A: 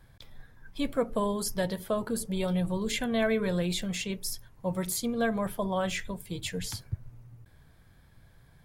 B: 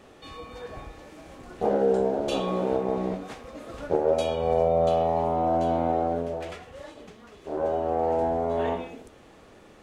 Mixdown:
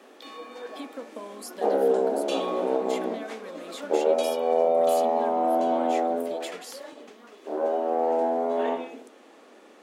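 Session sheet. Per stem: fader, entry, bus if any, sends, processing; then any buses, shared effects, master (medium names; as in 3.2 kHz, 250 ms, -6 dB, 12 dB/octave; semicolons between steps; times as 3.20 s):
+1.5 dB, 0.00 s, no send, compression, threshold -37 dBFS, peak gain reduction 14 dB
+1.0 dB, 0.00 s, no send, none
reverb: none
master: elliptic high-pass 240 Hz, stop band 60 dB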